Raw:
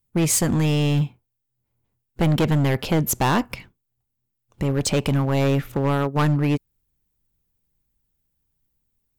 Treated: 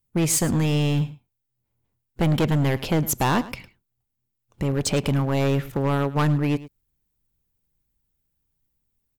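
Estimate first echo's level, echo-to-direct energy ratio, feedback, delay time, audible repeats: -17.5 dB, -17.5 dB, no steady repeat, 0.107 s, 1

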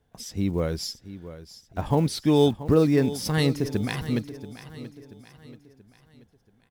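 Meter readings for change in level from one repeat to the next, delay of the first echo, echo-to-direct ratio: -7.0 dB, 0.682 s, -13.5 dB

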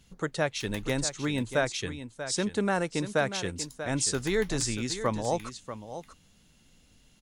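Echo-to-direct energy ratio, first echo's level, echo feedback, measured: -11.0 dB, -11.0 dB, no steady repeat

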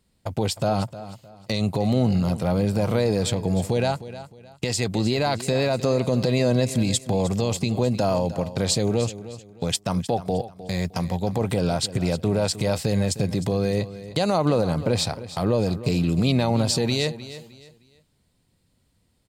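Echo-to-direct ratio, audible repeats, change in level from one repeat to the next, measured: -14.0 dB, 2, -10.5 dB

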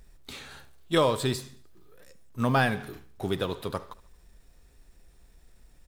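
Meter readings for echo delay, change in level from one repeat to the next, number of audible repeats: 74 ms, -5.5 dB, 3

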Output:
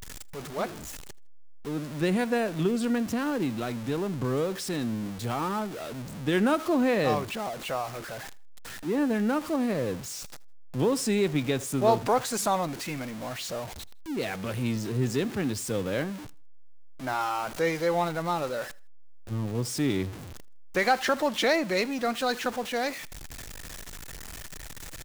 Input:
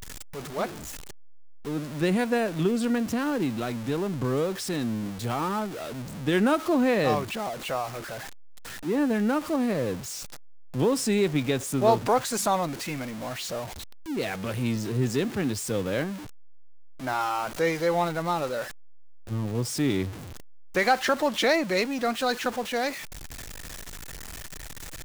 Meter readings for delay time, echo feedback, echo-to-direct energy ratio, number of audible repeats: 80 ms, 31%, -23.0 dB, 2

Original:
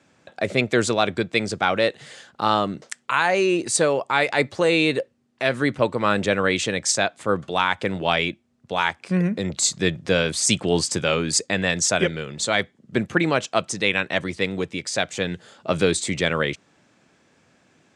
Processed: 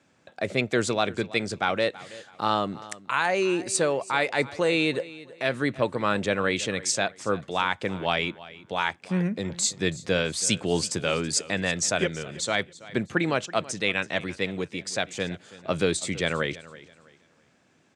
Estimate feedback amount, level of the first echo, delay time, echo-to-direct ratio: 30%, -18.5 dB, 0.328 s, -18.0 dB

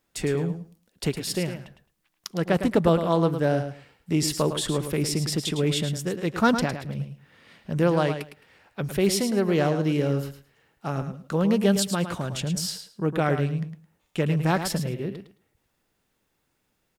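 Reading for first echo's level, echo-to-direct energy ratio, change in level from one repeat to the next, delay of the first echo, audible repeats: -9.0 dB, -9.0 dB, -15.5 dB, 0.108 s, 2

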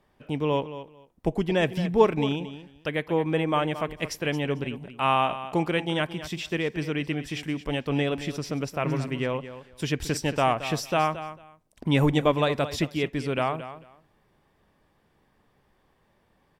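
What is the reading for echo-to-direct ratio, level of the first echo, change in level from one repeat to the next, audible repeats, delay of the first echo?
-13.0 dB, -13.0 dB, -15.0 dB, 2, 0.223 s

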